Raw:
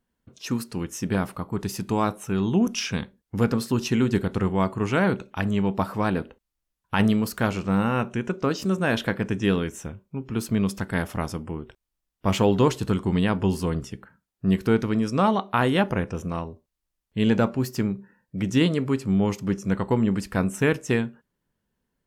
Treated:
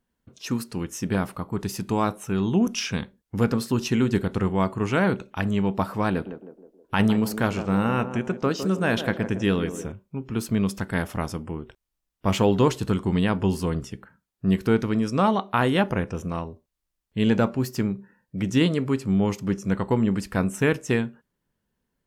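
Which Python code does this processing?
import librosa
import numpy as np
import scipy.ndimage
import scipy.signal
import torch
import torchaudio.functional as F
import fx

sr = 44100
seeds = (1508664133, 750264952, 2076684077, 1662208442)

y = fx.echo_banded(x, sr, ms=158, feedback_pct=53, hz=450.0, wet_db=-8.0, at=(6.1, 9.92))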